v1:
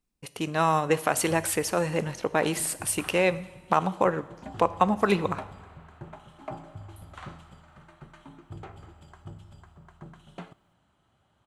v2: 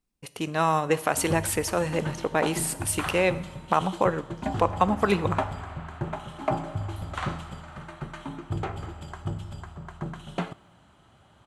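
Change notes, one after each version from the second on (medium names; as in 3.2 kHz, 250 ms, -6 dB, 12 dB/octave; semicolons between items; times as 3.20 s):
background +11.5 dB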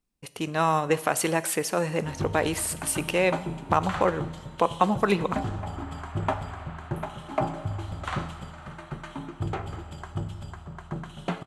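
background: entry +0.90 s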